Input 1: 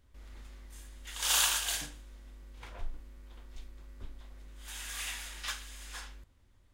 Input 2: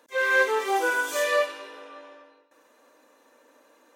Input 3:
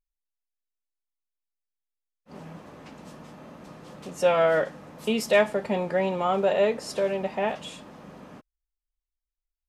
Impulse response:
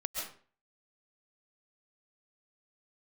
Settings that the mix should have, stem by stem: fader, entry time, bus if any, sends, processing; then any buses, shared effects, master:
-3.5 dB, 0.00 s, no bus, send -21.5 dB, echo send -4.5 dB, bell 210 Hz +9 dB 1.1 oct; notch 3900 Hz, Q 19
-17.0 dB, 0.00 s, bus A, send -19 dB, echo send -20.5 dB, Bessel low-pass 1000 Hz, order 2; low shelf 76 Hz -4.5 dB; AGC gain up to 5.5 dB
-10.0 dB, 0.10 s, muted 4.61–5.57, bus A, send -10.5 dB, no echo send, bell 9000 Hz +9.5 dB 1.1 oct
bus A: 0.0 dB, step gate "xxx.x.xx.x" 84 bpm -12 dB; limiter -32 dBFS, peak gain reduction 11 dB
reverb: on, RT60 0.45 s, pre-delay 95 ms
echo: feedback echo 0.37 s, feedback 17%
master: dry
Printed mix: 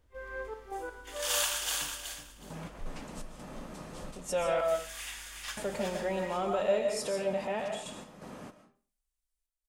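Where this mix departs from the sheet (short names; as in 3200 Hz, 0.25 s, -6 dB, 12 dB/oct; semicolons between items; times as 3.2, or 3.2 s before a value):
stem 1: missing bell 210 Hz +9 dB 1.1 oct; stem 3 -10.0 dB -> -2.0 dB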